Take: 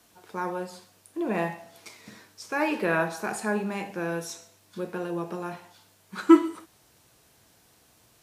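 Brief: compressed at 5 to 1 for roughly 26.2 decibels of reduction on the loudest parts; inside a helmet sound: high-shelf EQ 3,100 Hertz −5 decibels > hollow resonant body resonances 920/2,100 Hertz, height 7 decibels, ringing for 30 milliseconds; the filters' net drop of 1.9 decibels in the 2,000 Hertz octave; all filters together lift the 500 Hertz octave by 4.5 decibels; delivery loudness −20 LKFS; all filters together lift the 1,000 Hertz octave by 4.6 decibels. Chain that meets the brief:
parametric band 500 Hz +5.5 dB
parametric band 1,000 Hz +5.5 dB
parametric band 2,000 Hz −4 dB
downward compressor 5 to 1, threshold −38 dBFS
high-shelf EQ 3,100 Hz −5 dB
hollow resonant body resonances 920/2,100 Hz, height 7 dB, ringing for 30 ms
level +21.5 dB

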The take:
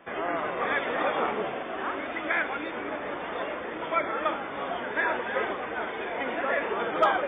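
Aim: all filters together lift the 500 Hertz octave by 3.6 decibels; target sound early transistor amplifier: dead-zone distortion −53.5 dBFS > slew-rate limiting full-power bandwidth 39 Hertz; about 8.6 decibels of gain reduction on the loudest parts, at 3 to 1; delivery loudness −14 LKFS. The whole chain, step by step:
parametric band 500 Hz +4.5 dB
downward compressor 3 to 1, threshold −27 dBFS
dead-zone distortion −53.5 dBFS
slew-rate limiting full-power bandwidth 39 Hz
level +18 dB

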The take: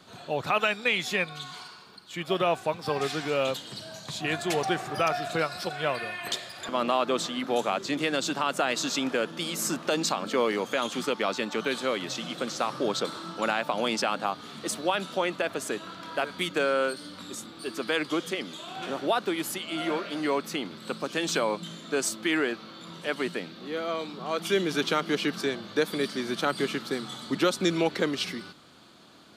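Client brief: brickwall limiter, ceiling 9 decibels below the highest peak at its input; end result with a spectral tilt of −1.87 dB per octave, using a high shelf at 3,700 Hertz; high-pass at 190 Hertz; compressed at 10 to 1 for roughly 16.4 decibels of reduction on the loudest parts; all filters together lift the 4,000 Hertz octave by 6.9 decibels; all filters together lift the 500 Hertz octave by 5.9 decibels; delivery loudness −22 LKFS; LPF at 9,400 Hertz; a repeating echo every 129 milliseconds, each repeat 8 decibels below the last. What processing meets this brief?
high-pass filter 190 Hz
low-pass filter 9,400 Hz
parametric band 500 Hz +7 dB
high-shelf EQ 3,700 Hz +8.5 dB
parametric band 4,000 Hz +3.5 dB
downward compressor 10 to 1, threshold −32 dBFS
brickwall limiter −26 dBFS
repeating echo 129 ms, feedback 40%, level −8 dB
level +14 dB

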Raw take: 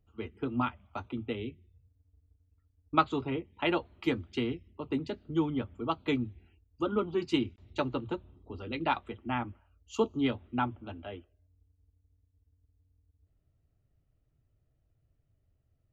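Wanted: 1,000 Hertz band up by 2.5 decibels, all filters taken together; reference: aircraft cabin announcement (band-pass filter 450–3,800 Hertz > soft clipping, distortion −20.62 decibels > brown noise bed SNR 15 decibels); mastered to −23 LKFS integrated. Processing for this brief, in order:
band-pass filter 450–3,800 Hz
parametric band 1,000 Hz +3.5 dB
soft clipping −12.5 dBFS
brown noise bed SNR 15 dB
level +13 dB

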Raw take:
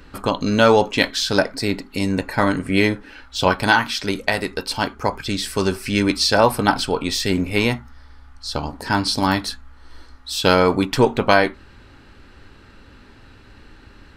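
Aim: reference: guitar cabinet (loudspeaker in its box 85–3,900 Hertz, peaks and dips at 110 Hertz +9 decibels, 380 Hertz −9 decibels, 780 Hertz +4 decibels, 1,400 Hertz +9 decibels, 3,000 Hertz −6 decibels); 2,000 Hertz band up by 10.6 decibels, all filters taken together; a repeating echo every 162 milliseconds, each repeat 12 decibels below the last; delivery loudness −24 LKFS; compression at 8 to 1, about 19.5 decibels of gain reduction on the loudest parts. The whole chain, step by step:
parametric band 2,000 Hz +9 dB
downward compressor 8 to 1, threshold −28 dBFS
loudspeaker in its box 85–3,900 Hz, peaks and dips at 110 Hz +9 dB, 380 Hz −9 dB, 780 Hz +4 dB, 1,400 Hz +9 dB, 3,000 Hz −6 dB
repeating echo 162 ms, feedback 25%, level −12 dB
level +6.5 dB

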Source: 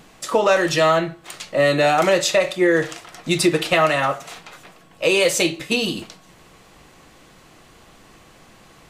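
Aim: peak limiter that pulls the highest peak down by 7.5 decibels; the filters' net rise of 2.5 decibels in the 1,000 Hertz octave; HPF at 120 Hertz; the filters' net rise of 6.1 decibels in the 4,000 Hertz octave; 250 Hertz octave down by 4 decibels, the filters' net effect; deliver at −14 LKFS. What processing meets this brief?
high-pass filter 120 Hz
parametric band 250 Hz −7 dB
parametric band 1,000 Hz +3.5 dB
parametric band 4,000 Hz +7.5 dB
level +6.5 dB
brickwall limiter −3.5 dBFS

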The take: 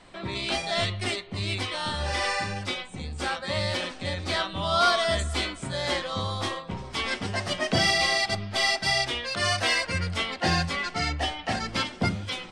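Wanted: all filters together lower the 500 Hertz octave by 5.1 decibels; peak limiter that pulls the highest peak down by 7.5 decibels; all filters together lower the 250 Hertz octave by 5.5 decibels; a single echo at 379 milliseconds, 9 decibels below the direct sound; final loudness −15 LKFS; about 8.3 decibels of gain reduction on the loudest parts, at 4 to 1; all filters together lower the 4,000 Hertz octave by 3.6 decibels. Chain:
parametric band 250 Hz −6.5 dB
parametric band 500 Hz −6 dB
parametric band 4,000 Hz −4.5 dB
downward compressor 4 to 1, threshold −29 dBFS
brickwall limiter −26 dBFS
single-tap delay 379 ms −9 dB
level +19.5 dB

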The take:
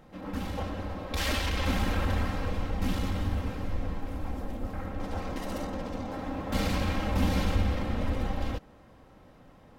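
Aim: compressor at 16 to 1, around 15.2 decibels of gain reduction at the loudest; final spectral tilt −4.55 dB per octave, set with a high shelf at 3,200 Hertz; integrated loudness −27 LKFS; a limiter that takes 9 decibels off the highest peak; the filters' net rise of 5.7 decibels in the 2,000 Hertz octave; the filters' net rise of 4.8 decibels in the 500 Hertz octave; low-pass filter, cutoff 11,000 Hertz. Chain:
low-pass filter 11,000 Hz
parametric band 500 Hz +5 dB
parametric band 2,000 Hz +5.5 dB
high-shelf EQ 3,200 Hz +3.5 dB
downward compressor 16 to 1, threshold −36 dBFS
level +19 dB
brickwall limiter −17 dBFS

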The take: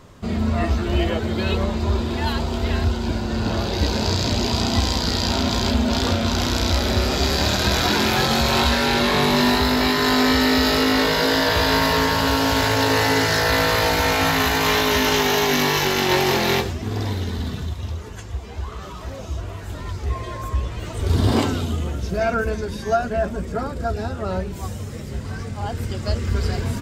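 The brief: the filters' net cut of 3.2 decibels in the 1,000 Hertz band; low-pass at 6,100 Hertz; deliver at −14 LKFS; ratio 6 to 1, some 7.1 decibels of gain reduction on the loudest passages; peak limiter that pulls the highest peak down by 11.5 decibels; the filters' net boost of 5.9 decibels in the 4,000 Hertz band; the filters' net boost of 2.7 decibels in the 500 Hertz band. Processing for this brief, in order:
low-pass filter 6,100 Hz
parametric band 500 Hz +5 dB
parametric band 1,000 Hz −6.5 dB
parametric band 4,000 Hz +8 dB
downward compressor 6 to 1, threshold −20 dBFS
level +14 dB
brickwall limiter −5 dBFS

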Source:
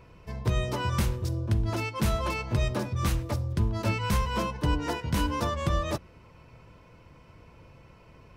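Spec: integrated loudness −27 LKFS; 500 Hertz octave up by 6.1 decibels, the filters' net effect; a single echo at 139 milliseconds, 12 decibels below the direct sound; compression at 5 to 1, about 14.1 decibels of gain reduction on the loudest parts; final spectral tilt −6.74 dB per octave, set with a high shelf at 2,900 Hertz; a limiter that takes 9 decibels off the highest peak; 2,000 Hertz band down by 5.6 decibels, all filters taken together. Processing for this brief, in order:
parametric band 500 Hz +8 dB
parametric band 2,000 Hz −7 dB
high-shelf EQ 2,900 Hz −3 dB
downward compressor 5 to 1, threshold −37 dBFS
brickwall limiter −34.5 dBFS
single-tap delay 139 ms −12 dB
level +17.5 dB

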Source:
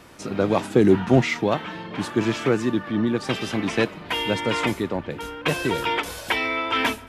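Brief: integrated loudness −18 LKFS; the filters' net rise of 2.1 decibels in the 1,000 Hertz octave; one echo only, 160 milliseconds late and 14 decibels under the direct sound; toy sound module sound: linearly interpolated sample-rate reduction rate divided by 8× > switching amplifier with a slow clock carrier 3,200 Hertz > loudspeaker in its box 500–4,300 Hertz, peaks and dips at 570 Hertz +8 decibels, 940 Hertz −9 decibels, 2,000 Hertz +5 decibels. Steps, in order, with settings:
parametric band 1,000 Hz +7.5 dB
single-tap delay 160 ms −14 dB
linearly interpolated sample-rate reduction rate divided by 8×
switching amplifier with a slow clock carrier 3,200 Hz
loudspeaker in its box 500–4,300 Hz, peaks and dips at 570 Hz +8 dB, 940 Hz −9 dB, 2,000 Hz +5 dB
level +4 dB

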